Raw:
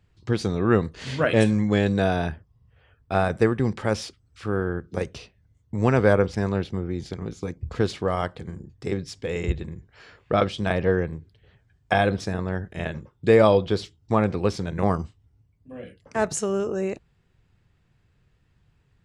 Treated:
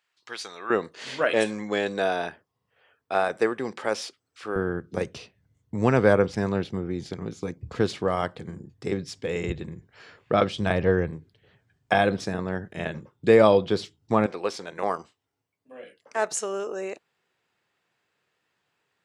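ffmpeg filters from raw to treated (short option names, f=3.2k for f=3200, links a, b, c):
-af "asetnsamples=n=441:p=0,asendcmd='0.7 highpass f 400;4.56 highpass f 120;10.56 highpass f 55;11.11 highpass f 140;14.26 highpass f 490',highpass=1.1k"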